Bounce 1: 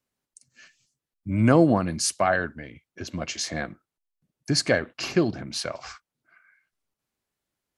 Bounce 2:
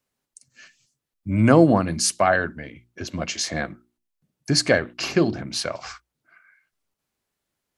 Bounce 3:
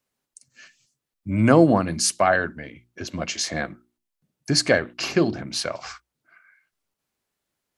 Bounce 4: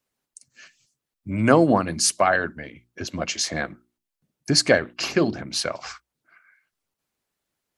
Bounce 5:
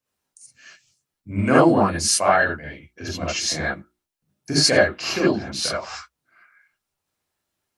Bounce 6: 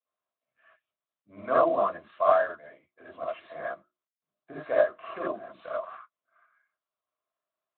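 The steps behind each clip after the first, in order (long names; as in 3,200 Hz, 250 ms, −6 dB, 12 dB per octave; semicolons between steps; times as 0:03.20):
mains-hum notches 60/120/180/240/300/360 Hz; level +3.5 dB
low-shelf EQ 130 Hz −3.5 dB
harmonic and percussive parts rebalanced percussive +6 dB; level −4 dB
reverb whose tail is shaped and stops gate 100 ms rising, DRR −7.5 dB; level −6 dB
pair of resonant band-passes 850 Hz, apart 0.72 octaves; Speex 18 kbit/s 8,000 Hz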